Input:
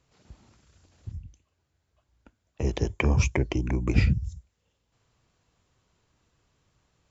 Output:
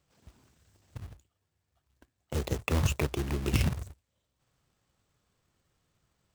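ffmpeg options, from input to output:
-af "asetrate=49392,aresample=44100,acrusher=bits=2:mode=log:mix=0:aa=0.000001,volume=0.531"

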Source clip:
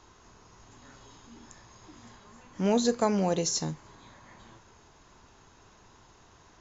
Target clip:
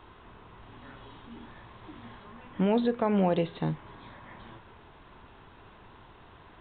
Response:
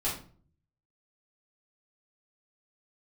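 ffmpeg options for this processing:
-af "alimiter=limit=0.0891:level=0:latency=1:release=199,aresample=8000,aresample=44100,volume=1.78"

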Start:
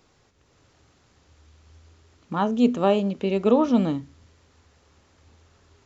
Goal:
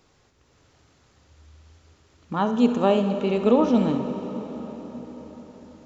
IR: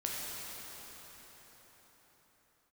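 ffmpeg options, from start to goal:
-filter_complex "[0:a]asplit=2[s0][s1];[1:a]atrim=start_sample=2205,adelay=67[s2];[s1][s2]afir=irnorm=-1:irlink=0,volume=0.282[s3];[s0][s3]amix=inputs=2:normalize=0"

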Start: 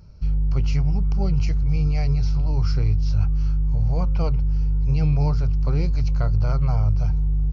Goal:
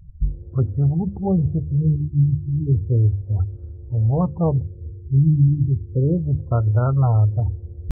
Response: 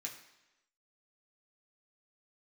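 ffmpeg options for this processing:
-af "afftdn=nr=32:nf=-34,bandreject=f=50:t=h:w=6,bandreject=f=100:t=h:w=6,bandreject=f=150:t=h:w=6,bandreject=f=200:t=h:w=6,bandreject=f=250:t=h:w=6,bandreject=f=300:t=h:w=6,adynamicequalizer=threshold=0.0141:dfrequency=220:dqfactor=1:tfrequency=220:tqfactor=1:attack=5:release=100:ratio=0.375:range=2:mode=boostabove:tftype=bell,atempo=0.95,afftfilt=real='re*lt(b*sr/1024,350*pow(1900/350,0.5+0.5*sin(2*PI*0.32*pts/sr)))':imag='im*lt(b*sr/1024,350*pow(1900/350,0.5+0.5*sin(2*PI*0.32*pts/sr)))':win_size=1024:overlap=0.75,volume=2.24"

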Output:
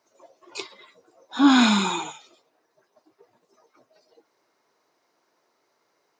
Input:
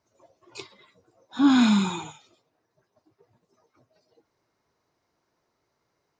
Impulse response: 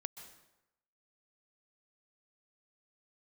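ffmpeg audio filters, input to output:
-af "highpass=320,volume=2.11"

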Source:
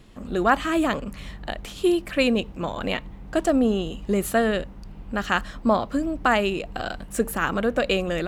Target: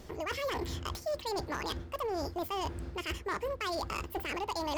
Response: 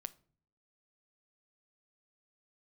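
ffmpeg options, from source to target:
-af "areverse,acompressor=threshold=0.0282:ratio=8,areverse,asoftclip=type=hard:threshold=0.0355,asetrate=76440,aresample=44100"

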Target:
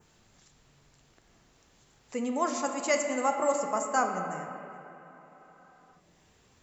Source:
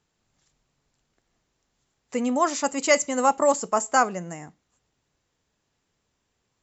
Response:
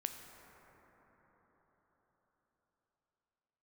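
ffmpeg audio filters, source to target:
-filter_complex "[1:a]atrim=start_sample=2205,asetrate=79380,aresample=44100[s0];[0:a][s0]afir=irnorm=-1:irlink=0,acompressor=mode=upward:threshold=0.00447:ratio=2.5,adynamicequalizer=threshold=0.00447:dfrequency=3800:dqfactor=1.1:tfrequency=3800:tqfactor=1.1:attack=5:release=100:ratio=0.375:range=2:mode=cutabove:tftype=bell"

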